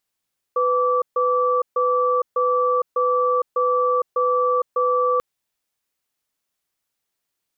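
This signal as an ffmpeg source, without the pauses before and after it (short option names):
-f lavfi -i "aevalsrc='0.112*(sin(2*PI*499*t)+sin(2*PI*1160*t))*clip(min(mod(t,0.6),0.46-mod(t,0.6))/0.005,0,1)':d=4.64:s=44100"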